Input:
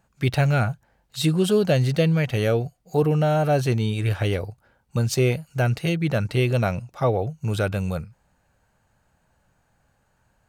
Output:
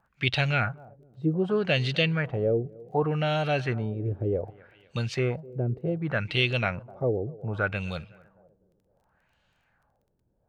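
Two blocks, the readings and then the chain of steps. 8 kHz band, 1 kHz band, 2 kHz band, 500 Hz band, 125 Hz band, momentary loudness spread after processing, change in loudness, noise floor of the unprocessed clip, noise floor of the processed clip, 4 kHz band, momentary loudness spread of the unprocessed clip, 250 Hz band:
under -15 dB, -4.5 dB, +1.0 dB, -5.0 dB, -7.0 dB, 8 LU, -5.0 dB, -67 dBFS, -72 dBFS, +0.5 dB, 8 LU, -6.0 dB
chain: high shelf 2100 Hz +11.5 dB; tape echo 0.253 s, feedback 52%, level -21 dB, low-pass 2600 Hz; LFO low-pass sine 0.66 Hz 360–3400 Hz; crackle 13/s -50 dBFS; gain -7.5 dB

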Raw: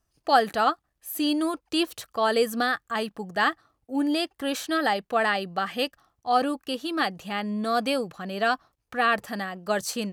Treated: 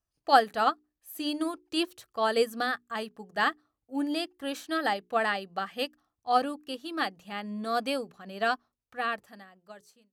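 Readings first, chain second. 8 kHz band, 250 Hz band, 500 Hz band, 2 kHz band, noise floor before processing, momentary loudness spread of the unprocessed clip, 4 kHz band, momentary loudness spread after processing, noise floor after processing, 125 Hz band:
-9.0 dB, -6.0 dB, -4.0 dB, -4.5 dB, -78 dBFS, 8 LU, -4.5 dB, 11 LU, under -85 dBFS, n/a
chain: ending faded out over 1.58 s; notches 60/120/180/240/300/360/420 Hz; upward expander 1.5:1, over -39 dBFS

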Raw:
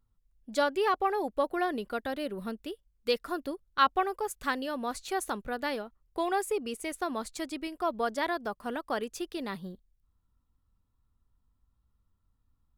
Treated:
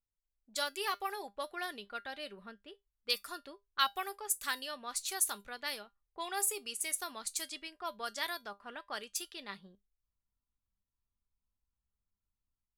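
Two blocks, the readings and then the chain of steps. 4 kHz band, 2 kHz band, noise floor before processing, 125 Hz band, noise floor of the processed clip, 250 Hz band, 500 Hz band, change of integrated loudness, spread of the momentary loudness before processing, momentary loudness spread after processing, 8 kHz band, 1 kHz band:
+2.0 dB, -4.5 dB, -75 dBFS, n/a, under -85 dBFS, -17.0 dB, -13.5 dB, -5.0 dB, 10 LU, 14 LU, +8.5 dB, -9.0 dB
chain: pre-emphasis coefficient 0.97; low-pass opened by the level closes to 720 Hz, open at -41 dBFS; low shelf 150 Hz +6.5 dB; AGC gain up to 6 dB; resonator 200 Hz, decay 0.16 s, harmonics all, mix 60%; gain +7.5 dB

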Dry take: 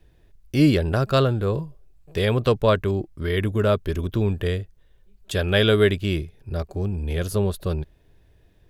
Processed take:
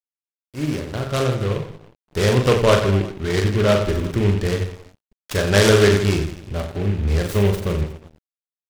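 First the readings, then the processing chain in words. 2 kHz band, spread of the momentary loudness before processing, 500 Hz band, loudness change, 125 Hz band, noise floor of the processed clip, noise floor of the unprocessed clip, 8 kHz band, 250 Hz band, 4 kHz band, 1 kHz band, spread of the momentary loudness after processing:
+4.0 dB, 12 LU, +3.5 dB, +3.0 dB, +3.0 dB, under -85 dBFS, -57 dBFS, +12.0 dB, +1.5 dB, +3.0 dB, +3.5 dB, 13 LU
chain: opening faded in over 2.25 s; reverse bouncing-ball echo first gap 40 ms, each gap 1.3×, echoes 5; crossover distortion -42.5 dBFS; noise-modulated delay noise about 2000 Hz, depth 0.062 ms; gain +2.5 dB

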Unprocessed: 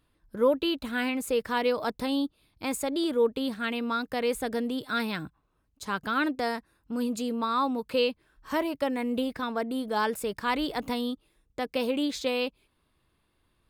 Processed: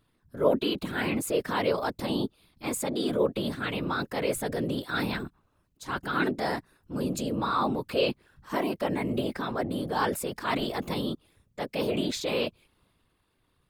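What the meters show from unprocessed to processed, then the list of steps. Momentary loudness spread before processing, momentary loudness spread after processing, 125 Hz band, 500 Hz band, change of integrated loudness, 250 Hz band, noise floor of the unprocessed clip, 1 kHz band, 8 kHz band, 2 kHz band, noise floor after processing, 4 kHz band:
8 LU, 9 LU, +12.5 dB, -0.5 dB, -0.5 dB, -1.0 dB, -73 dBFS, -0.5 dB, +3.0 dB, -0.5 dB, -71 dBFS, -0.5 dB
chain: transient shaper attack -3 dB, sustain +4 dB; whisperiser

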